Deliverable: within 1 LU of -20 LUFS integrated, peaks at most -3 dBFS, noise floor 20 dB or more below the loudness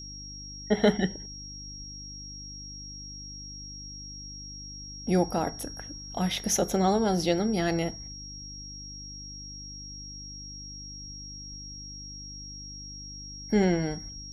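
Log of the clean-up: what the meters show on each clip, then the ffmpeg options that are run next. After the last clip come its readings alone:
hum 50 Hz; highest harmonic 300 Hz; hum level -44 dBFS; steady tone 5.6 kHz; tone level -41 dBFS; loudness -31.5 LUFS; peak level -11.5 dBFS; loudness target -20.0 LUFS
-> -af "bandreject=f=50:t=h:w=4,bandreject=f=100:t=h:w=4,bandreject=f=150:t=h:w=4,bandreject=f=200:t=h:w=4,bandreject=f=250:t=h:w=4,bandreject=f=300:t=h:w=4"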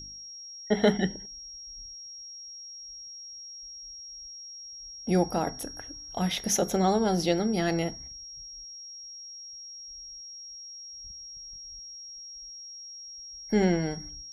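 hum not found; steady tone 5.6 kHz; tone level -41 dBFS
-> -af "bandreject=f=5600:w=30"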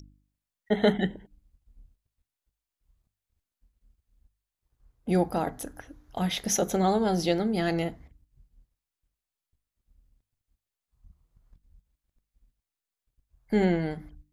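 steady tone not found; loudness -27.5 LUFS; peak level -11.5 dBFS; loudness target -20.0 LUFS
-> -af "volume=2.37"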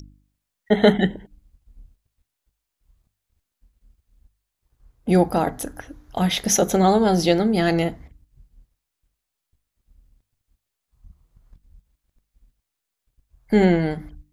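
loudness -20.0 LUFS; peak level -4.0 dBFS; noise floor -82 dBFS

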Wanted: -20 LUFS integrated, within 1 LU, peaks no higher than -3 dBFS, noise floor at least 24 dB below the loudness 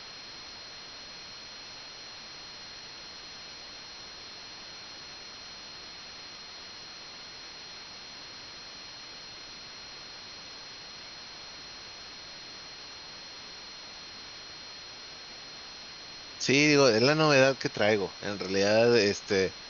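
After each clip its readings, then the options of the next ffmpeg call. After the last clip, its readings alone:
steady tone 4.2 kHz; tone level -46 dBFS; noise floor -46 dBFS; noise floor target -49 dBFS; loudness -24.5 LUFS; peak level -9.0 dBFS; loudness target -20.0 LUFS
-> -af "bandreject=f=4200:w=30"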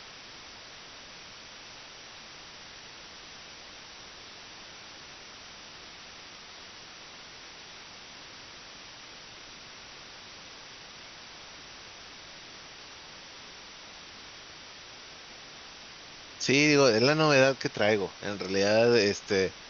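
steady tone not found; noise floor -48 dBFS; noise floor target -49 dBFS
-> -af "afftdn=nr=6:nf=-48"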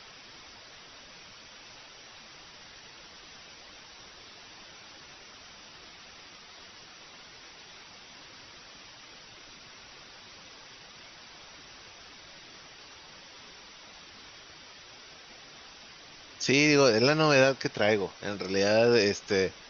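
noise floor -51 dBFS; loudness -24.5 LUFS; peak level -9.0 dBFS; loudness target -20.0 LUFS
-> -af "volume=1.68"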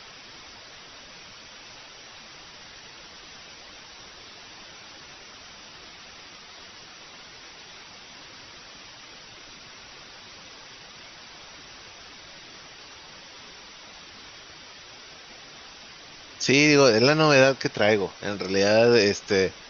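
loudness -20.0 LUFS; peak level -4.5 dBFS; noise floor -46 dBFS

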